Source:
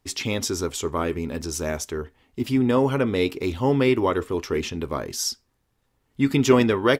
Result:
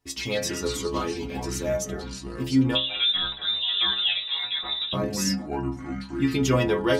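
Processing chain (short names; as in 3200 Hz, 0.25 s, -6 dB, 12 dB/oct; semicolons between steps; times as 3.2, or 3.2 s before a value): echoes that change speed 88 ms, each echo -5 st, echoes 3, each echo -6 dB; 2.75–4.93 inverted band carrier 3800 Hz; metallic resonator 63 Hz, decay 0.49 s, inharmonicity 0.008; gain +6.5 dB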